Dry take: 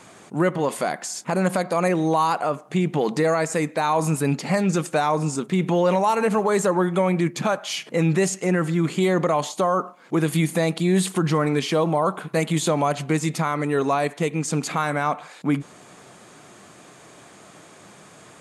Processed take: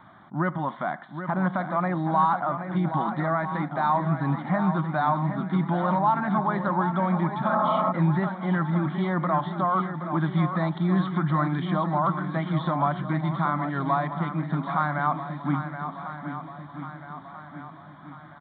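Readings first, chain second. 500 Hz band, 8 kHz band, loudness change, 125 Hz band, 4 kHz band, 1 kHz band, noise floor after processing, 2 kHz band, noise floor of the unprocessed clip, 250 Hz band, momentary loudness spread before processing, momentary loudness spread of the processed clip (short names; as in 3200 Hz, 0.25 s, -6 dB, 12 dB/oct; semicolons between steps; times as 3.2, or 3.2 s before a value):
-9.0 dB, under -40 dB, -3.5 dB, -1.0 dB, -12.5 dB, 0.0 dB, -45 dBFS, -3.5 dB, -48 dBFS, -3.0 dB, 5 LU, 14 LU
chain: downsampling 8000 Hz; fixed phaser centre 1100 Hz, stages 4; on a send: swung echo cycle 1.289 s, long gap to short 1.5:1, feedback 45%, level -9 dB; on the sum: spectral repair 7.52–7.89, 220–1400 Hz before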